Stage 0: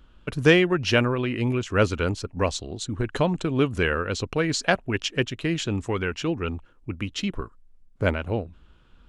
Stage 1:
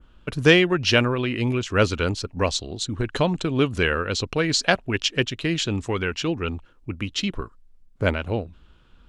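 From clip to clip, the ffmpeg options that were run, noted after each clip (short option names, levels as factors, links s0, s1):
-af "adynamicequalizer=threshold=0.00708:dfrequency=4200:dqfactor=1:tfrequency=4200:tqfactor=1:attack=5:release=100:ratio=0.375:range=3:mode=boostabove:tftype=bell,volume=1.12"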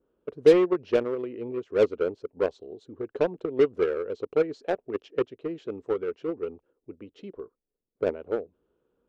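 -filter_complex "[0:a]bandpass=f=440:t=q:w=4.1:csg=0,asplit=2[s0][s1];[s1]acrusher=bits=3:mix=0:aa=0.5,volume=0.631[s2];[s0][s2]amix=inputs=2:normalize=0"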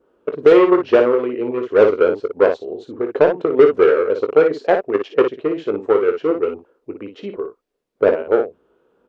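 -filter_complex "[0:a]asplit=2[s0][s1];[s1]highpass=f=720:p=1,volume=5.62,asoftclip=type=tanh:threshold=0.473[s2];[s0][s2]amix=inputs=2:normalize=0,lowpass=f=1700:p=1,volume=0.501,aecho=1:1:20|57:0.316|0.447,alimiter=level_in=2.82:limit=0.891:release=50:level=0:latency=1,volume=0.891"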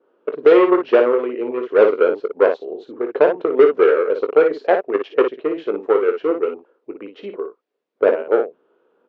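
-af "highpass=290,lowpass=3800"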